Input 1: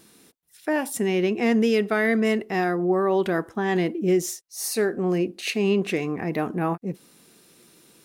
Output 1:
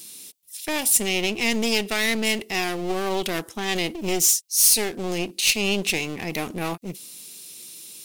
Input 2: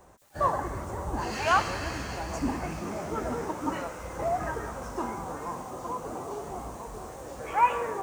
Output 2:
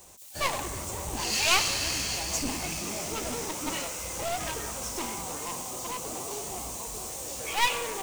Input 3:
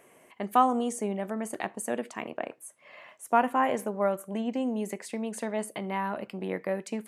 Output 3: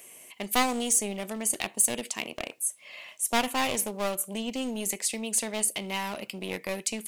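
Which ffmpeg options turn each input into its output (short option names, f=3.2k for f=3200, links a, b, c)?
-af "aeval=exprs='clip(val(0),-1,0.0237)':c=same,aexciter=amount=5:drive=5.9:freq=2.3k,volume=-2dB"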